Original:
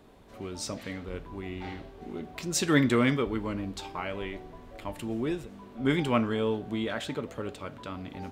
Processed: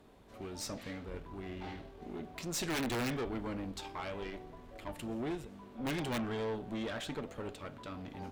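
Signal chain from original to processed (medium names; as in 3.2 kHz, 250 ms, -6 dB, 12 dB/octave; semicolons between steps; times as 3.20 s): integer overflow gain 16.5 dB; valve stage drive 31 dB, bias 0.6; trim -1.5 dB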